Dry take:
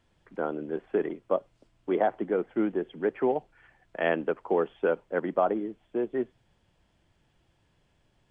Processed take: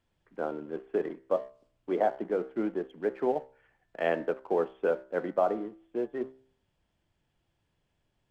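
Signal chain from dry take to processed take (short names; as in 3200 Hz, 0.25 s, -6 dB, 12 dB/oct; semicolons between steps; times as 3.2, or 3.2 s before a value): de-hum 65.55 Hz, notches 34; dynamic EQ 590 Hz, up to +4 dB, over -34 dBFS, Q 1.4; in parallel at -4 dB: crossover distortion -41 dBFS; on the sum: gain -8 dB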